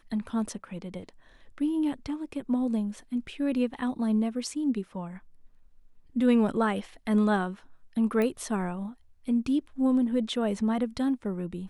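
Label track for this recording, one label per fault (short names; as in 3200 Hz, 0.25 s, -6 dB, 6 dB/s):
8.220000	8.220000	pop -18 dBFS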